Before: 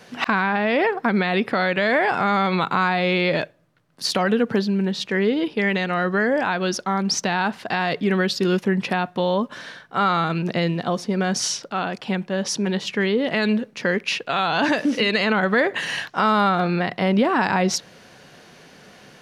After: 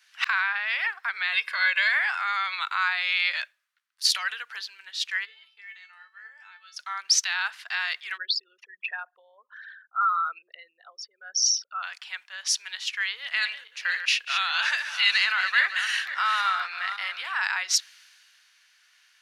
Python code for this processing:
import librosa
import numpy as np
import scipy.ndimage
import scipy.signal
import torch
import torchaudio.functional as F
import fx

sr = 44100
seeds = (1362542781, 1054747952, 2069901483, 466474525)

y = fx.comb(x, sr, ms=1.9, depth=0.81, at=(1.32, 1.89))
y = fx.comb_fb(y, sr, f0_hz=440.0, decay_s=0.29, harmonics='all', damping=0.0, mix_pct=90, at=(5.24, 6.76), fade=0.02)
y = fx.envelope_sharpen(y, sr, power=3.0, at=(8.16, 11.82), fade=0.02)
y = fx.reverse_delay_fb(y, sr, ms=274, feedback_pct=42, wet_db=-7.5, at=(13.13, 17.37))
y = scipy.signal.sosfilt(scipy.signal.butter(4, 1400.0, 'highpass', fs=sr, output='sos'), y)
y = fx.band_widen(y, sr, depth_pct=40)